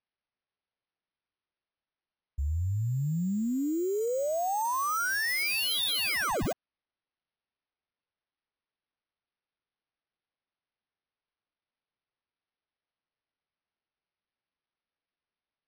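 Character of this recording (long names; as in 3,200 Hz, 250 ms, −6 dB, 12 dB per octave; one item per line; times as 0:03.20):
aliases and images of a low sample rate 7,200 Hz, jitter 0%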